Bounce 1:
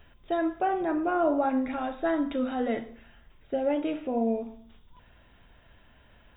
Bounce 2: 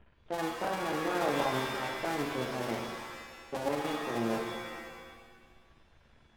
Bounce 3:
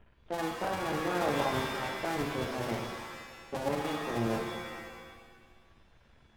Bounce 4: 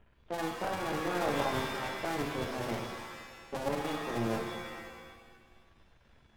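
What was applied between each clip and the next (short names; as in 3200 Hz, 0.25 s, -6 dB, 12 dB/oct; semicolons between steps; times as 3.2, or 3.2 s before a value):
cycle switcher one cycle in 2, muted; low-pass opened by the level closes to 2200 Hz, open at -27.5 dBFS; shimmer reverb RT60 1.4 s, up +7 st, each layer -2 dB, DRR 3.5 dB; gain -5 dB
octaver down 1 oct, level -5 dB
half-wave gain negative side -3 dB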